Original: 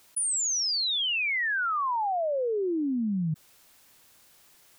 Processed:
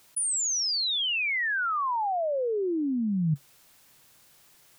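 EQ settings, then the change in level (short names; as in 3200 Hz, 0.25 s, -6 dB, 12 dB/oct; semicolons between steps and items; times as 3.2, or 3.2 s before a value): bell 140 Hz +7 dB 0.39 oct; 0.0 dB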